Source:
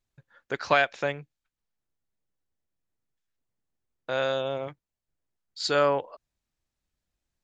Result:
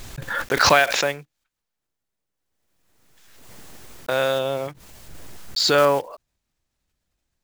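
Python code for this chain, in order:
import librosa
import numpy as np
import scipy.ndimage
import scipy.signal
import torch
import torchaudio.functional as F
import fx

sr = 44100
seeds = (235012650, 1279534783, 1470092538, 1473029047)

y = fx.block_float(x, sr, bits=5)
y = fx.low_shelf(y, sr, hz=230.0, db=-6.5, at=(0.79, 4.12))
y = fx.pre_swell(y, sr, db_per_s=33.0)
y = y * 10.0 ** (5.5 / 20.0)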